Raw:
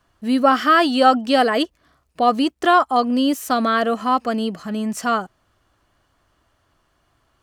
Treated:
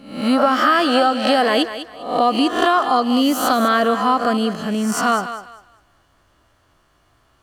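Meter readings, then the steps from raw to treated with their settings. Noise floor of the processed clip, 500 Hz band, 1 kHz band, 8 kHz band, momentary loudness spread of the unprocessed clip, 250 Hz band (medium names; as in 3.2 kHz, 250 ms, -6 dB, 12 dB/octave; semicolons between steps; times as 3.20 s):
-60 dBFS, +1.5 dB, +0.5 dB, +6.0 dB, 9 LU, +1.5 dB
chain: reverse spectral sustain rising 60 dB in 0.57 s; compression, threshold -15 dBFS, peak gain reduction 8 dB; on a send: thinning echo 200 ms, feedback 26%, high-pass 400 Hz, level -10.5 dB; on the sum: trim +3 dB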